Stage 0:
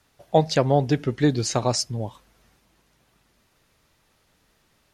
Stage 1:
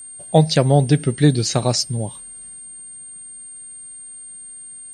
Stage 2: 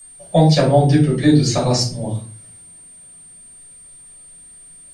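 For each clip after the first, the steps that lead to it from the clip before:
whistle 8.7 kHz -38 dBFS; fifteen-band graphic EQ 160 Hz +7 dB, 1 kHz -4 dB, 4 kHz +5 dB; trim +3 dB
reverberation RT60 0.40 s, pre-delay 3 ms, DRR -6.5 dB; trim -7.5 dB

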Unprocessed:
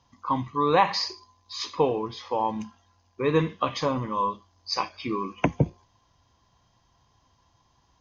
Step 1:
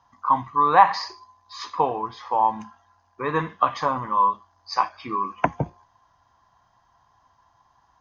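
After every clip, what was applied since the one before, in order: high-order bell 1.1 kHz +12 dB; trim -4.5 dB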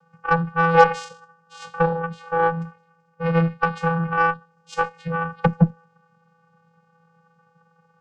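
vocoder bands 8, square 166 Hz; Chebyshev shaper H 8 -29 dB, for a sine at -3.5 dBFS; trim +2.5 dB

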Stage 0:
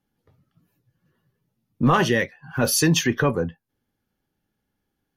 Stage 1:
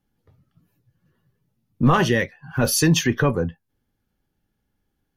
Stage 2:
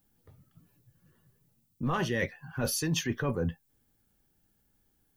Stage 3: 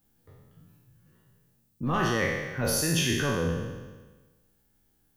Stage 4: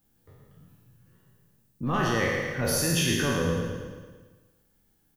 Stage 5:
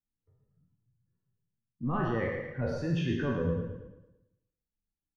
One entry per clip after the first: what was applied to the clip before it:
bass shelf 89 Hz +10 dB
reverse; compression 8:1, threshold -27 dBFS, peak gain reduction 15 dB; reverse; added noise violet -75 dBFS
spectral sustain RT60 1.30 s
feedback delay 112 ms, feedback 54%, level -7 dB
expander on every frequency bin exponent 1.5; tape spacing loss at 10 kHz 41 dB

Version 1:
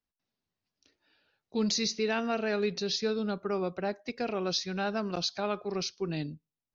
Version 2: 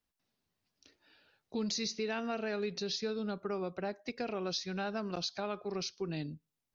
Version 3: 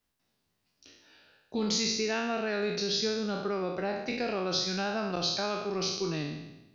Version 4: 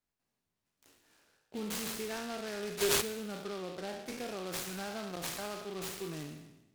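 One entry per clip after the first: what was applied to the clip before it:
compression 2:1, threshold -45 dBFS, peak gain reduction 11 dB; trim +4 dB
spectral sustain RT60 0.96 s; trim +3.5 dB
time-frequency box 2.80–3.01 s, 290–4800 Hz +12 dB; delay time shaken by noise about 2.9 kHz, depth 0.072 ms; trim -8.5 dB

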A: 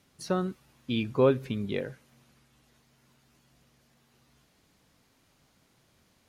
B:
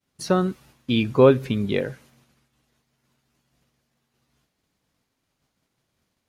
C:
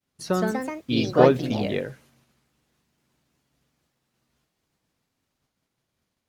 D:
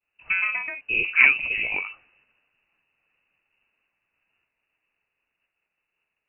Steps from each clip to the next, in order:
expander -55 dBFS; trim +8 dB
ever faster or slower copies 166 ms, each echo +3 st, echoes 3; trim -4 dB
frequency inversion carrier 2.8 kHz; trim -1 dB

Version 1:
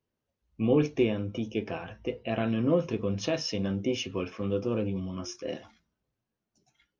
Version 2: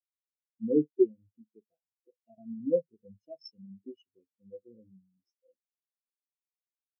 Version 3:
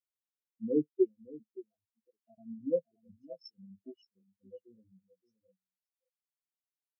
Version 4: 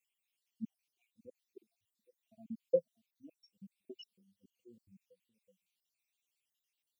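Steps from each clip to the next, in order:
treble shelf 3.6 kHz +11.5 dB; spectral contrast expander 4:1
reverb removal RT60 1.8 s; delay 572 ms -19 dB; trim -3.5 dB
random holes in the spectrogram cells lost 58%; resonant high shelf 1.9 kHz +9 dB, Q 3; trim +1.5 dB

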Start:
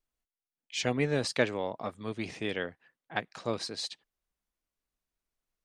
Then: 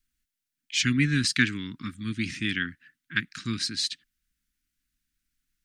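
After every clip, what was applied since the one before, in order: Chebyshev band-stop 280–1500 Hz, order 3; trim +9 dB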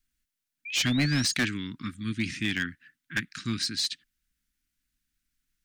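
hard clipper -20.5 dBFS, distortion -11 dB; painted sound rise, 0.65–1.34 s, 2.3–6.8 kHz -38 dBFS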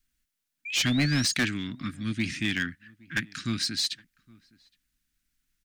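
in parallel at -10 dB: saturation -35.5 dBFS, distortion -5 dB; on the sum: echo from a far wall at 140 m, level -25 dB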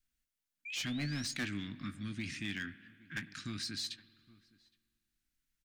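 peak limiter -24 dBFS, peak gain reduction 5.5 dB; doubling 20 ms -12 dB; spring tank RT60 2 s, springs 49 ms, chirp 45 ms, DRR 16.5 dB; trim -8 dB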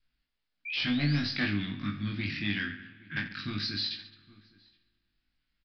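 on a send: reverse bouncing-ball echo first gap 20 ms, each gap 1.4×, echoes 5; on the sum: resampled via 11.025 kHz; trim +5 dB

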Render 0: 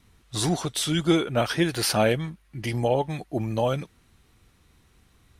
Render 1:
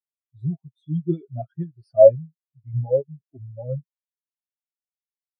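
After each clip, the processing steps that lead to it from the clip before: comb 7.5 ms, depth 62%; spectral contrast expander 4:1; trim +4.5 dB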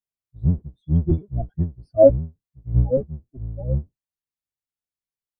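octave divider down 1 oct, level -1 dB; bass shelf 210 Hz +9.5 dB; trim -2.5 dB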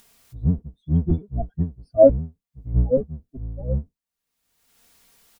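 comb 4.3 ms, depth 43%; upward compressor, threshold -30 dBFS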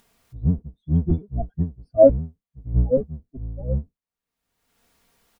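tape noise reduction on one side only decoder only

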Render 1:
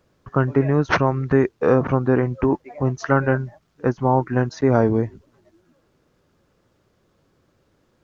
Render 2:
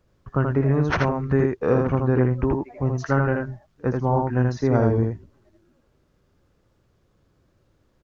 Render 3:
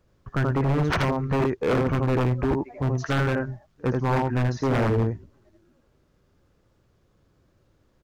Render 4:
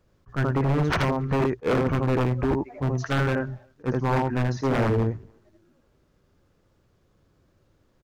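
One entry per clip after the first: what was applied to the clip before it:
bass shelf 96 Hz +12 dB; on a send: delay 80 ms -3.5 dB; on the sum: trim -5.5 dB
wavefolder -16.5 dBFS
hum notches 60/120 Hz; speakerphone echo 280 ms, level -30 dB; attacks held to a fixed rise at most 450 dB/s

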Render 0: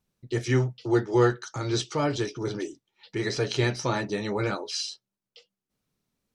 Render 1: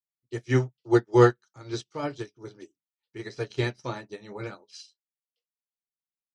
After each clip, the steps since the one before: hum notches 50/100/150/200 Hz; upward expansion 2.5:1, over -44 dBFS; trim +5.5 dB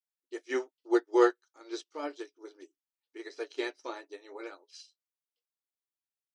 brick-wall FIR high-pass 270 Hz; trim -5 dB

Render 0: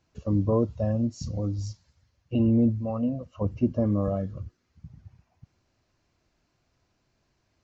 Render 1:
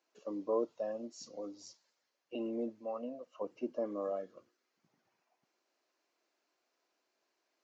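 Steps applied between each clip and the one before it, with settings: high-pass 340 Hz 24 dB/octave; trim -6 dB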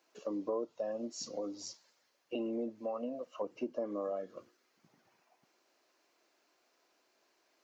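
compression 3:1, threshold -44 dBFS, peak gain reduction 12 dB; trim +8 dB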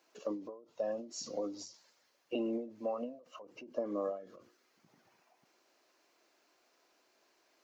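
endings held to a fixed fall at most 120 dB/s; trim +2 dB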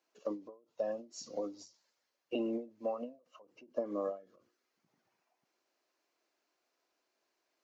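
upward expansion 1.5:1, over -55 dBFS; trim +1.5 dB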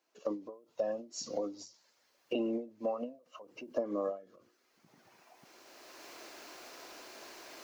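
recorder AGC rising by 15 dB/s; trim +1.5 dB

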